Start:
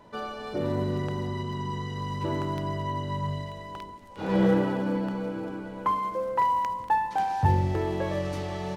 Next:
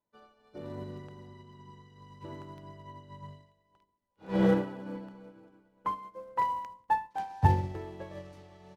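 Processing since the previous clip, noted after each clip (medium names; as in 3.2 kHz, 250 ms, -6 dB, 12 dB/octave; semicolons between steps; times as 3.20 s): upward expansion 2.5:1, over -43 dBFS; trim +1.5 dB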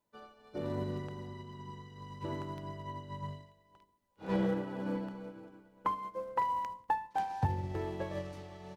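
compression 6:1, threshold -34 dBFS, peak gain reduction 17 dB; trim +5 dB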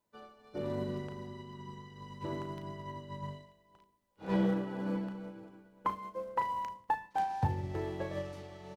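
doubling 36 ms -9 dB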